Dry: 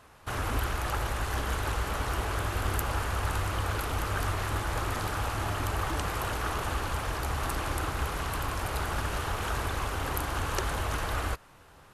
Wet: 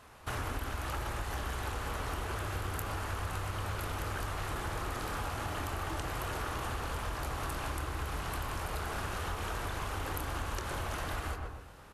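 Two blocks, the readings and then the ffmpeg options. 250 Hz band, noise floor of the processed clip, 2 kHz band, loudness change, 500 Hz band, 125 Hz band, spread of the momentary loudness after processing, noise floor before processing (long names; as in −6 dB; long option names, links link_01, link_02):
−5.0 dB, −46 dBFS, −5.5 dB, −5.5 dB, −5.0 dB, −5.5 dB, 1 LU, −55 dBFS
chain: -filter_complex "[0:a]asplit=2[link_01][link_02];[link_02]adelay=25,volume=-10.5dB[link_03];[link_01][link_03]amix=inputs=2:normalize=0,bandreject=frequency=56.89:width_type=h:width=4,bandreject=frequency=113.78:width_type=h:width=4,bandreject=frequency=170.67:width_type=h:width=4,bandreject=frequency=227.56:width_type=h:width=4,bandreject=frequency=284.45:width_type=h:width=4,bandreject=frequency=341.34:width_type=h:width=4,bandreject=frequency=398.23:width_type=h:width=4,bandreject=frequency=455.12:width_type=h:width=4,bandreject=frequency=512.01:width_type=h:width=4,bandreject=frequency=568.9:width_type=h:width=4,bandreject=frequency=625.79:width_type=h:width=4,bandreject=frequency=682.68:width_type=h:width=4,bandreject=frequency=739.57:width_type=h:width=4,bandreject=frequency=796.46:width_type=h:width=4,bandreject=frequency=853.35:width_type=h:width=4,bandreject=frequency=910.24:width_type=h:width=4,bandreject=frequency=967.13:width_type=h:width=4,bandreject=frequency=1024.02:width_type=h:width=4,bandreject=frequency=1080.91:width_type=h:width=4,bandreject=frequency=1137.8:width_type=h:width=4,bandreject=frequency=1194.69:width_type=h:width=4,bandreject=frequency=1251.58:width_type=h:width=4,bandreject=frequency=1308.47:width_type=h:width=4,bandreject=frequency=1365.36:width_type=h:width=4,bandreject=frequency=1422.25:width_type=h:width=4,bandreject=frequency=1479.14:width_type=h:width=4,bandreject=frequency=1536.03:width_type=h:width=4,bandreject=frequency=1592.92:width_type=h:width=4,bandreject=frequency=1649.81:width_type=h:width=4,asplit=2[link_04][link_05];[link_05]adelay=125,lowpass=frequency=1400:poles=1,volume=-5dB,asplit=2[link_06][link_07];[link_07]adelay=125,lowpass=frequency=1400:poles=1,volume=0.34,asplit=2[link_08][link_09];[link_09]adelay=125,lowpass=frequency=1400:poles=1,volume=0.34,asplit=2[link_10][link_11];[link_11]adelay=125,lowpass=frequency=1400:poles=1,volume=0.34[link_12];[link_06][link_08][link_10][link_12]amix=inputs=4:normalize=0[link_13];[link_04][link_13]amix=inputs=2:normalize=0,acompressor=threshold=-33dB:ratio=6"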